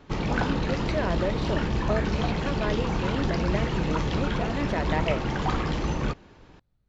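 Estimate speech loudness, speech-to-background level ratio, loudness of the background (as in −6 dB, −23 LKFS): −32.5 LKFS, −4.5 dB, −28.0 LKFS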